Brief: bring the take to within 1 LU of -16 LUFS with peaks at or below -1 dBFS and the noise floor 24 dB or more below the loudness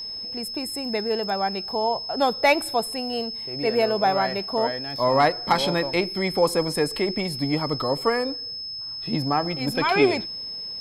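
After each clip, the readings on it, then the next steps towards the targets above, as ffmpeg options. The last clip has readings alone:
steady tone 5200 Hz; tone level -31 dBFS; loudness -24.0 LUFS; peak -6.5 dBFS; loudness target -16.0 LUFS
-> -af "bandreject=f=5.2k:w=30"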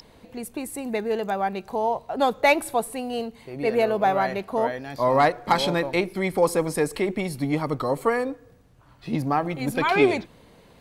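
steady tone none; loudness -24.5 LUFS; peak -6.5 dBFS; loudness target -16.0 LUFS
-> -af "volume=8.5dB,alimiter=limit=-1dB:level=0:latency=1"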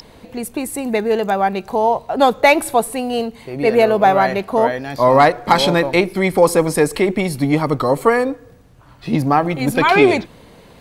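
loudness -16.0 LUFS; peak -1.0 dBFS; noise floor -45 dBFS

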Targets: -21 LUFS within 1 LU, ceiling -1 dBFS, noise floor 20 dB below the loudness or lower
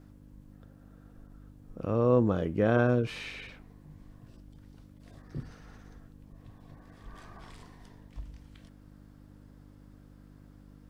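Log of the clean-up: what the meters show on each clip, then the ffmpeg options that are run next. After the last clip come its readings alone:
hum 50 Hz; harmonics up to 300 Hz; hum level -54 dBFS; loudness -28.5 LUFS; peak -13.0 dBFS; loudness target -21.0 LUFS
-> -af "bandreject=f=50:t=h:w=4,bandreject=f=100:t=h:w=4,bandreject=f=150:t=h:w=4,bandreject=f=200:t=h:w=4,bandreject=f=250:t=h:w=4,bandreject=f=300:t=h:w=4"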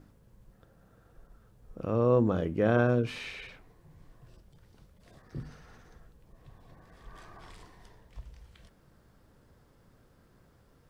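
hum none; loudness -28.5 LUFS; peak -14.0 dBFS; loudness target -21.0 LUFS
-> -af "volume=7.5dB"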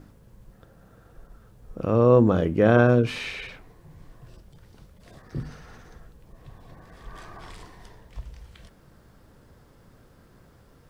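loudness -21.0 LUFS; peak -6.5 dBFS; noise floor -55 dBFS

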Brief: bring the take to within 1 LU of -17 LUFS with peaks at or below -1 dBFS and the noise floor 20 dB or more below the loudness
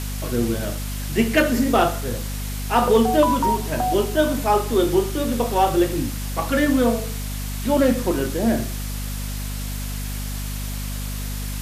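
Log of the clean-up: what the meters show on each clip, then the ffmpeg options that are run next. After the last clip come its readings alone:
hum 50 Hz; harmonics up to 250 Hz; hum level -26 dBFS; noise floor -28 dBFS; noise floor target -42 dBFS; loudness -22.0 LUFS; peak -6.5 dBFS; loudness target -17.0 LUFS
-> -af "bandreject=f=50:t=h:w=4,bandreject=f=100:t=h:w=4,bandreject=f=150:t=h:w=4,bandreject=f=200:t=h:w=4,bandreject=f=250:t=h:w=4"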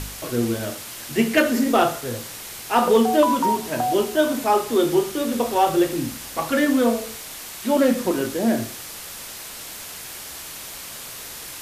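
hum none; noise floor -36 dBFS; noise floor target -41 dBFS
-> -af "afftdn=nr=6:nf=-36"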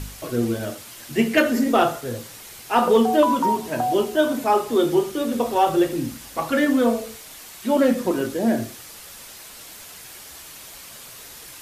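noise floor -42 dBFS; loudness -21.5 LUFS; peak -7.0 dBFS; loudness target -17.0 LUFS
-> -af "volume=4.5dB"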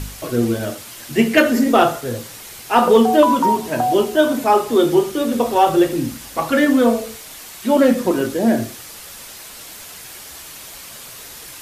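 loudness -17.0 LUFS; peak -2.5 dBFS; noise floor -37 dBFS

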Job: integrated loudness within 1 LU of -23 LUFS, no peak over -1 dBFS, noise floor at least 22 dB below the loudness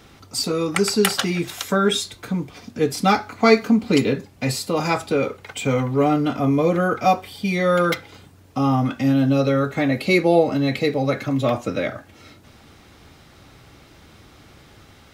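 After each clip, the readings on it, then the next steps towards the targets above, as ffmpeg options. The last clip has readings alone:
loudness -20.5 LUFS; peak -1.0 dBFS; loudness target -23.0 LUFS
-> -af "volume=-2.5dB"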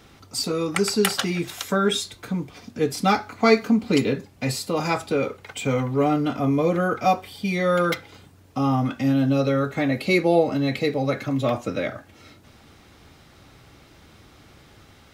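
loudness -23.0 LUFS; peak -3.5 dBFS; noise floor -52 dBFS

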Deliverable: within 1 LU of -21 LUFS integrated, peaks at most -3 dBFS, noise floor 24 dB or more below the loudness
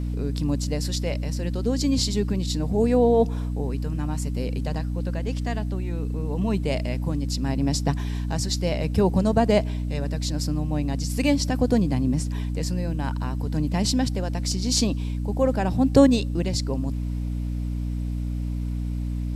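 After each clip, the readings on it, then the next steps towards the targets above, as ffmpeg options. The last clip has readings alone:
hum 60 Hz; harmonics up to 300 Hz; hum level -25 dBFS; loudness -25.0 LUFS; peak -3.5 dBFS; loudness target -21.0 LUFS
-> -af "bandreject=f=60:t=h:w=4,bandreject=f=120:t=h:w=4,bandreject=f=180:t=h:w=4,bandreject=f=240:t=h:w=4,bandreject=f=300:t=h:w=4"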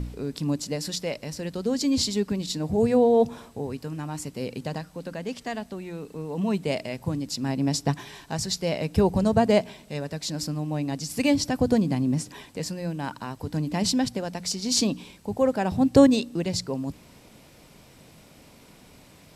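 hum none; loudness -26.0 LUFS; peak -3.5 dBFS; loudness target -21.0 LUFS
-> -af "volume=5dB,alimiter=limit=-3dB:level=0:latency=1"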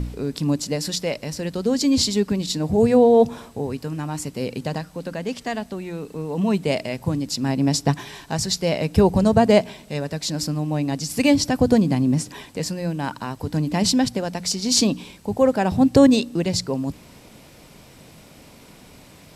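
loudness -21.5 LUFS; peak -3.0 dBFS; noise floor -47 dBFS

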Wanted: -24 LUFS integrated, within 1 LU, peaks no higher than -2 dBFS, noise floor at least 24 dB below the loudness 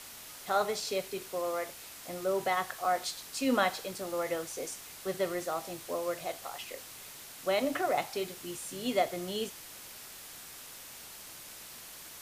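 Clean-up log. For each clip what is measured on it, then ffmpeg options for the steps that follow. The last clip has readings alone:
noise floor -48 dBFS; noise floor target -58 dBFS; loudness -34.0 LUFS; peak -13.5 dBFS; loudness target -24.0 LUFS
-> -af "afftdn=nr=10:nf=-48"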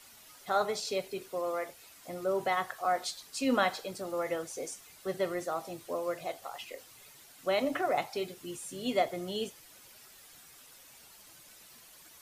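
noise floor -56 dBFS; noise floor target -58 dBFS
-> -af "afftdn=nr=6:nf=-56"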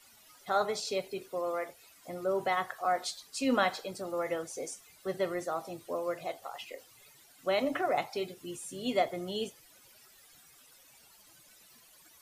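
noise floor -60 dBFS; loudness -34.0 LUFS; peak -13.5 dBFS; loudness target -24.0 LUFS
-> -af "volume=10dB"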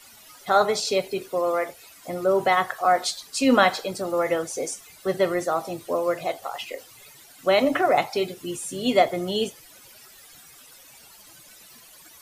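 loudness -24.0 LUFS; peak -3.5 dBFS; noise floor -50 dBFS

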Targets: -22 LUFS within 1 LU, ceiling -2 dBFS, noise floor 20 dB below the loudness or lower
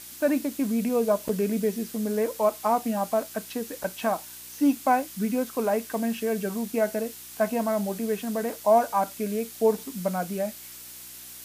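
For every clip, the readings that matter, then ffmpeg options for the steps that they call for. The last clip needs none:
hum 60 Hz; harmonics up to 360 Hz; hum level -60 dBFS; noise floor -43 dBFS; noise floor target -47 dBFS; loudness -27.0 LUFS; peak -10.0 dBFS; loudness target -22.0 LUFS
-> -af "bandreject=f=60:t=h:w=4,bandreject=f=120:t=h:w=4,bandreject=f=180:t=h:w=4,bandreject=f=240:t=h:w=4,bandreject=f=300:t=h:w=4,bandreject=f=360:t=h:w=4"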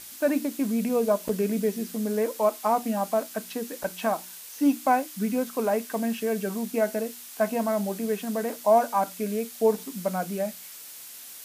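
hum none; noise floor -43 dBFS; noise floor target -47 dBFS
-> -af "afftdn=nr=6:nf=-43"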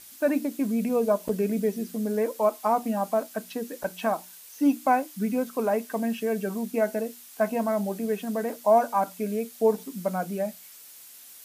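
noise floor -48 dBFS; loudness -27.0 LUFS; peak -10.0 dBFS; loudness target -22.0 LUFS
-> -af "volume=5dB"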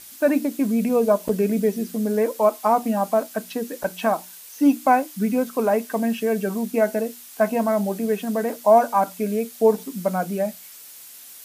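loudness -22.0 LUFS; peak -5.0 dBFS; noise floor -43 dBFS

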